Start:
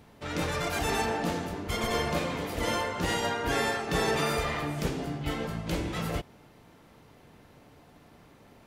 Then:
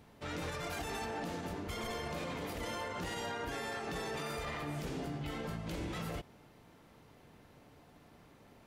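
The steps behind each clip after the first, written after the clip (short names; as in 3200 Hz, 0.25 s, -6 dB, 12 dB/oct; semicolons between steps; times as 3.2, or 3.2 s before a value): limiter -26.5 dBFS, peak gain reduction 10.5 dB; gain -4.5 dB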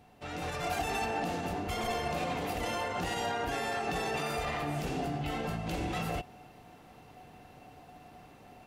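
AGC gain up to 6 dB; small resonant body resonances 740/2700 Hz, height 16 dB, ringing for 95 ms; gain -1.5 dB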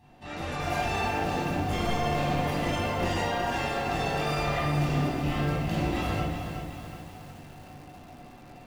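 reverb RT60 0.80 s, pre-delay 22 ms, DRR -6 dB; lo-fi delay 0.369 s, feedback 55%, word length 7-bit, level -7.5 dB; gain -5 dB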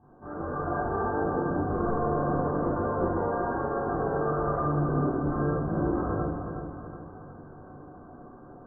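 rippled Chebyshev low-pass 1600 Hz, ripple 9 dB; gain +6.5 dB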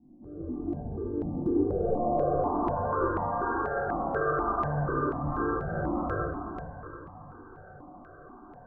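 low-pass sweep 280 Hz -> 1600 Hz, 1.25–3.2; step phaser 4.1 Hz 430–1500 Hz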